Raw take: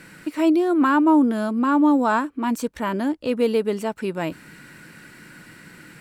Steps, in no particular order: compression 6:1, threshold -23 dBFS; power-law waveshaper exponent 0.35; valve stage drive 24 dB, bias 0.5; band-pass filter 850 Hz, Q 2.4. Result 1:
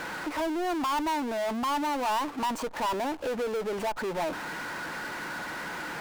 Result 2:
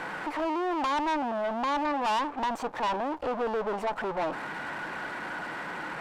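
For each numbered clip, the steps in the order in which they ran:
compression > band-pass filter > valve stage > power-law waveshaper; power-law waveshaper > band-pass filter > valve stage > compression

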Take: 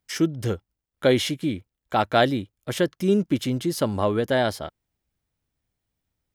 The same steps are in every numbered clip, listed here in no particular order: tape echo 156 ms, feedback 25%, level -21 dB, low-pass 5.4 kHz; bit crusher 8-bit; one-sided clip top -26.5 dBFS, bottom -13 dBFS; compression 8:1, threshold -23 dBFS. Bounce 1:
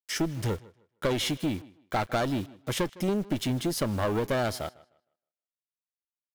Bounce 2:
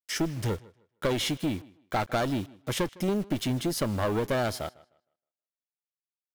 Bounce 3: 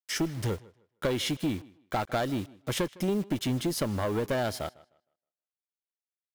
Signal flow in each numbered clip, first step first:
one-sided clip > bit crusher > tape echo > compression; one-sided clip > compression > bit crusher > tape echo; compression > one-sided clip > bit crusher > tape echo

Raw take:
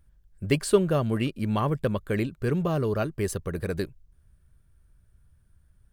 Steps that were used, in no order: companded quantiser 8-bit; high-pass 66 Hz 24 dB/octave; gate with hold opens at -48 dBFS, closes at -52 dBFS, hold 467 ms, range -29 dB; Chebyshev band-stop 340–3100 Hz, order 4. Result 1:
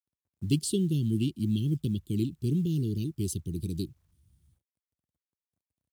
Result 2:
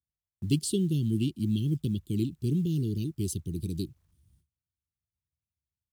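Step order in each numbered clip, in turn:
Chebyshev band-stop > gate with hold > companded quantiser > high-pass; Chebyshev band-stop > companded quantiser > high-pass > gate with hold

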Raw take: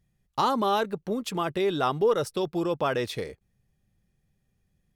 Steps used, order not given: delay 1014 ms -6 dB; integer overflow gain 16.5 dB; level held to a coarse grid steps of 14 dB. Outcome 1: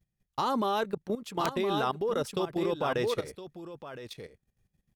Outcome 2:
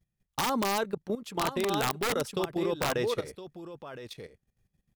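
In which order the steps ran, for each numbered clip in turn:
delay > level held to a coarse grid > integer overflow; delay > integer overflow > level held to a coarse grid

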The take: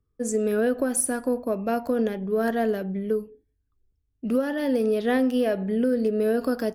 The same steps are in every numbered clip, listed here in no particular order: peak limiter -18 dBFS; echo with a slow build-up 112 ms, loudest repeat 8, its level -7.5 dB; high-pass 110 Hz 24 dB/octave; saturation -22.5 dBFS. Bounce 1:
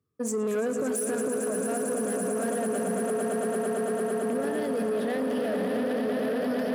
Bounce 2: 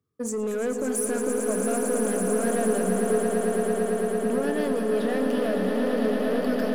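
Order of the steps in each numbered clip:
echo with a slow build-up > peak limiter > saturation > high-pass; high-pass > peak limiter > saturation > echo with a slow build-up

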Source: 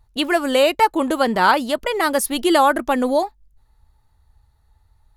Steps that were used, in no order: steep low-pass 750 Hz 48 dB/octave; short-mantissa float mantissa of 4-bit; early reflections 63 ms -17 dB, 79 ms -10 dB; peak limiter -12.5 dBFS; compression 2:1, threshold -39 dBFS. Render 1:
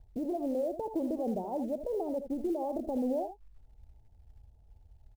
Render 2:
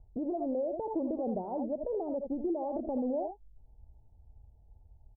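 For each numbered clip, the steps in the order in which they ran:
peak limiter > steep low-pass > short-mantissa float > compression > early reflections; short-mantissa float > early reflections > peak limiter > steep low-pass > compression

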